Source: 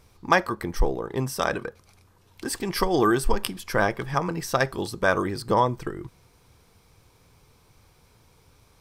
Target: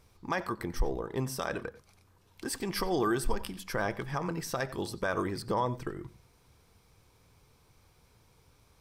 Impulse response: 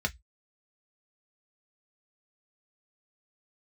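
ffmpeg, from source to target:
-filter_complex "[0:a]alimiter=limit=-14dB:level=0:latency=1:release=62,asplit=2[a][b];[1:a]atrim=start_sample=2205,adelay=90[c];[b][c]afir=irnorm=-1:irlink=0,volume=-23dB[d];[a][d]amix=inputs=2:normalize=0,volume=-5.5dB"

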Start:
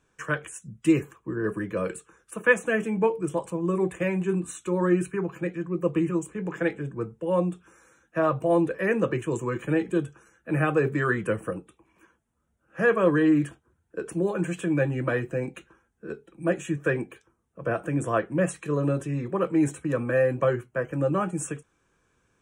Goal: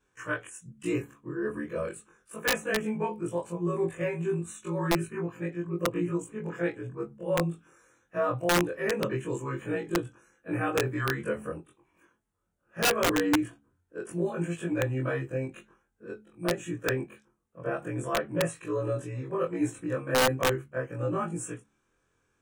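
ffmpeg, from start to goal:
-af "afftfilt=real='re':imag='-im':win_size=2048:overlap=0.75,aeval=exprs='(mod(7.5*val(0)+1,2)-1)/7.5':c=same,bandreject=f=70.94:t=h:w=4,bandreject=f=141.88:t=h:w=4,bandreject=f=212.82:t=h:w=4,bandreject=f=283.76:t=h:w=4"

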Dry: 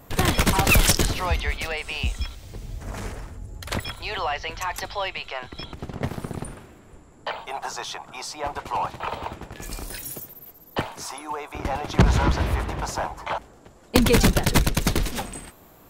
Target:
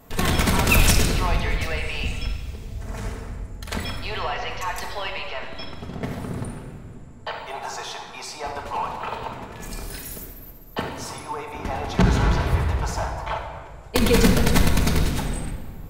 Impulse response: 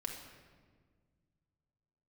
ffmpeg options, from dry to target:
-filter_complex "[0:a]asettb=1/sr,asplit=3[a][b][c];[a]atrim=end=12.214[d];[b]atrim=start=12.21:end=14.02,asetpts=PTS-STARTPTS,afade=t=in:d=0.004:c=qsin,afade=t=out:st=1.806:d=0.004:c=qsin,equalizer=f=220:w=3.9:g=-14.5[e];[c]atrim=start=14.016[f];[d][e]acrossfade=d=0.004:c1=hsin:c2=qsin[g];[g][f]acrossfade=d=0.004:c1=qsin:c2=hsin[h];[1:a]atrim=start_sample=2205,asetrate=40572,aresample=44100[i];[h][i]afir=irnorm=-1:irlink=0"

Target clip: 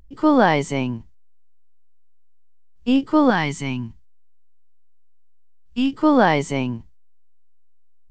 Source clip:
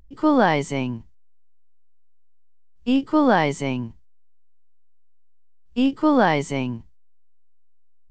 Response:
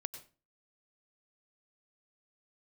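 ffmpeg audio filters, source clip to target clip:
-filter_complex "[0:a]asettb=1/sr,asplit=3[a][b][c];[a]atrim=end=3.304[d];[b]atrim=start=3.3:end=5.94,asetpts=PTS-STARTPTS,afade=t=in:d=0.004:c=qsin,afade=t=out:st=2.636:d=0.004:c=qsin,equalizer=f=540:t=o:w=1:g=-14[e];[c]atrim=start=5.936[f];[d][e]acrossfade=d=0.004:c1=hsin:c2=qsin[g];[g][f]acrossfade=d=0.004:c1=qsin:c2=hsin,volume=2dB"

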